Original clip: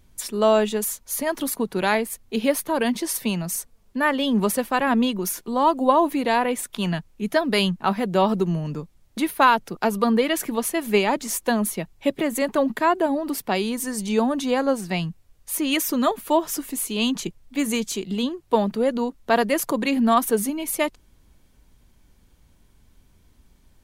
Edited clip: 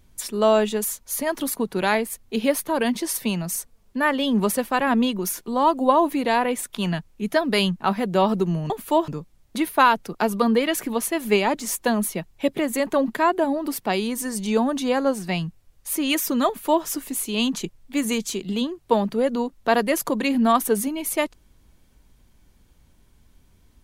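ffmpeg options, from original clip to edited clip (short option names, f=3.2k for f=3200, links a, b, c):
-filter_complex "[0:a]asplit=3[a][b][c];[a]atrim=end=8.702[d];[b]atrim=start=16.088:end=16.472[e];[c]atrim=start=8.698[f];[d][e]acrossfade=d=0.004:c1=hsin:c2=hsin[g];[g][f]acrossfade=d=0.004:c1=hsin:c2=hsin"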